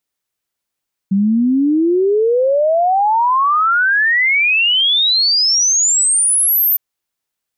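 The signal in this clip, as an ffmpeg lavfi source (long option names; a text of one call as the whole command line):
ffmpeg -f lavfi -i "aevalsrc='0.299*clip(min(t,5.66-t)/0.01,0,1)*sin(2*PI*190*5.66/log(14000/190)*(exp(log(14000/190)*t/5.66)-1))':duration=5.66:sample_rate=44100" out.wav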